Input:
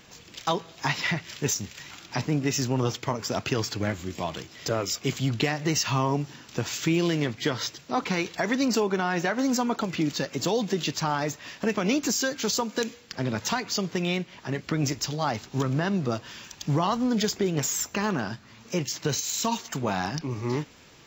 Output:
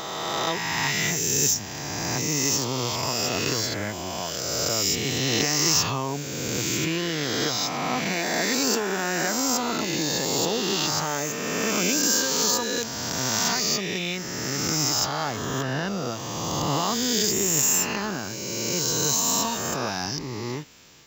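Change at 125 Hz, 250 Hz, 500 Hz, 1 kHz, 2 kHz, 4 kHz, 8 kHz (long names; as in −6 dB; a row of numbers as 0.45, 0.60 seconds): −2.0, −1.5, +0.5, +1.5, +3.5, +7.0, +9.5 decibels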